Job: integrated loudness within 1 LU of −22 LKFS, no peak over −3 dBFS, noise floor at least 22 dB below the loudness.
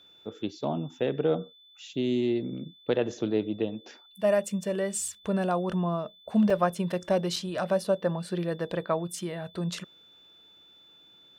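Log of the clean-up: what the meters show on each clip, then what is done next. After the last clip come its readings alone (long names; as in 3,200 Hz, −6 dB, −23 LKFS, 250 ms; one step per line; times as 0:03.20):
number of dropouts 3; longest dropout 3.8 ms; interfering tone 3,500 Hz; level of the tone −54 dBFS; integrated loudness −29.5 LKFS; sample peak −11.5 dBFS; target loudness −22.0 LKFS
→ repair the gap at 0:05.08/0:06.50/0:07.36, 3.8 ms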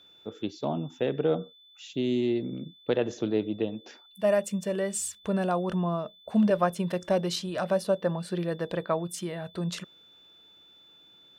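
number of dropouts 0; interfering tone 3,500 Hz; level of the tone −54 dBFS
→ notch filter 3,500 Hz, Q 30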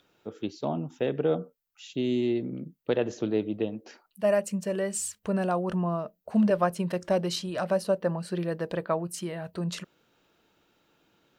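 interfering tone none found; integrated loudness −29.5 LKFS; sample peak −11.5 dBFS; target loudness −22.0 LKFS
→ level +7.5 dB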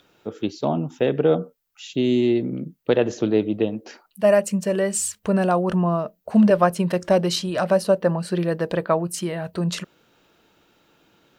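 integrated loudness −22.0 LKFS; sample peak −4.0 dBFS; background noise floor −67 dBFS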